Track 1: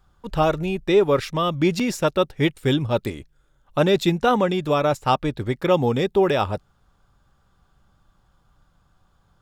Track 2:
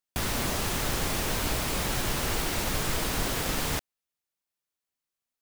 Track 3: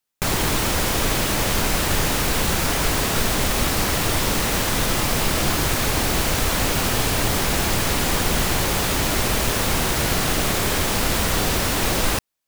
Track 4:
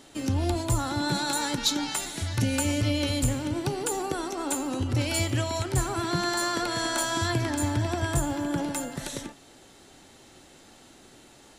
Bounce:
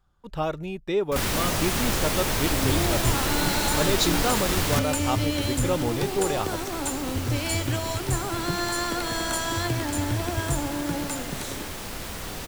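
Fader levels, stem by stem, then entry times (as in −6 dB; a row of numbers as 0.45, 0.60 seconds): −8.0, +3.0, −14.0, −0.5 decibels; 0.00, 1.00, 0.90, 2.35 seconds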